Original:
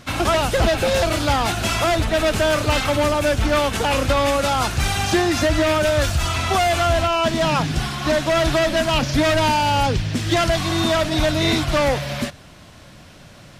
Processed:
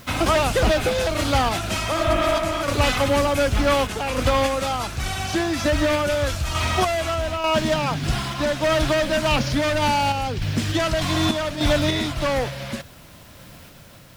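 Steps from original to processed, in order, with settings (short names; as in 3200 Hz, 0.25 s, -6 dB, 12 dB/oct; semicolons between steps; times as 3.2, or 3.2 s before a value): spectral repair 1.91–2.5, 220–3400 Hz before; added noise blue -52 dBFS; random-step tremolo; speed mistake 25 fps video run at 24 fps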